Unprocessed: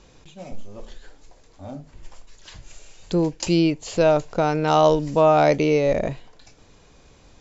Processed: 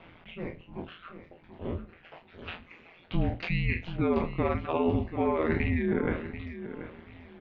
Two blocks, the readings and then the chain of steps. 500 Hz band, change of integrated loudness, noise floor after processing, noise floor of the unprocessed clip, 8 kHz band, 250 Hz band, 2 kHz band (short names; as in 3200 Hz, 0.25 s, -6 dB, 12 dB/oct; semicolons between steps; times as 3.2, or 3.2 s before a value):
-11.5 dB, -11.0 dB, -57 dBFS, -53 dBFS, n/a, -6.5 dB, -3.5 dB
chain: spectral trails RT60 0.63 s; mistuned SSB -280 Hz 150–3200 Hz; low shelf 240 Hz -6 dB; reverse; compressor 10:1, threshold -27 dBFS, peak gain reduction 14.5 dB; reverse; reverb removal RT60 1.4 s; on a send: feedback echo 0.734 s, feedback 27%, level -12 dB; on the sum: ring modulator 85 Hz; gain +8 dB